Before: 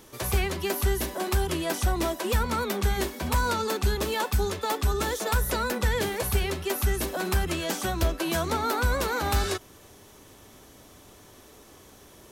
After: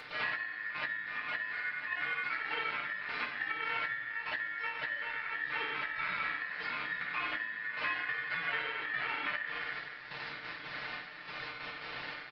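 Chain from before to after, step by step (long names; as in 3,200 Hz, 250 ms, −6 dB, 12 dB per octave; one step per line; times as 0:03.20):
linear delta modulator 16 kbit/s, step −40 dBFS
gate pattern ".xxx...xx.x" 141 BPM −12 dB
slap from a distant wall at 16 metres, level −8 dB
convolution reverb RT60 0.75 s, pre-delay 3 ms, DRR −2.5 dB
downward compressor 12 to 1, threshold −30 dBFS, peak gain reduction 19.5 dB
comb filter 6.6 ms, depth 84%
upward compression, threshold −38 dBFS
ring modulation 1,800 Hz
low-shelf EQ 70 Hz −8.5 dB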